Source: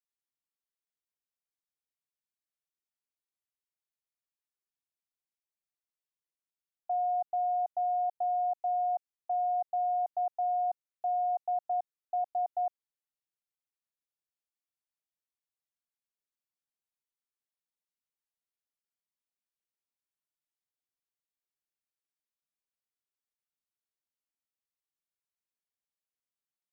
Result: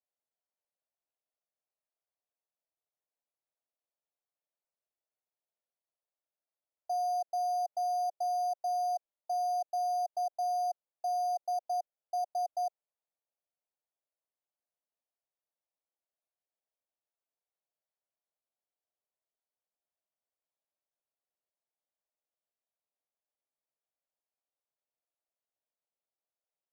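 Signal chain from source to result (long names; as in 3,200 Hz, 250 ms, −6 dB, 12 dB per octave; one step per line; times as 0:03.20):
bad sample-rate conversion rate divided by 8×, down none, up zero stuff
resonant band-pass 630 Hz, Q 2.7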